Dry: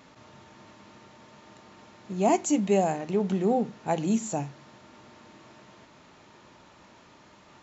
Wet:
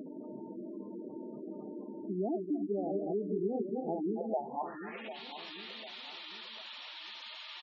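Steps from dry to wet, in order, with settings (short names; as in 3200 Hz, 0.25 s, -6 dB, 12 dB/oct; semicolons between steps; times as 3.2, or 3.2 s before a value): regenerating reverse delay 0.136 s, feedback 46%, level -4.5 dB; in parallel at -2 dB: upward compressor, threshold -27 dBFS; on the sum: band-pass sweep 310 Hz -> 3500 Hz, 3.98–5.2; compressor 4:1, threshold -35 dBFS, peak gain reduction 17.5 dB; dynamic EQ 270 Hz, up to -4 dB, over -48 dBFS, Q 2; HPF 170 Hz 12 dB/oct; on a send: feedback echo 0.749 s, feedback 43%, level -12 dB; on the sum: spectral gate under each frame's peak -15 dB strong; gain +4.5 dB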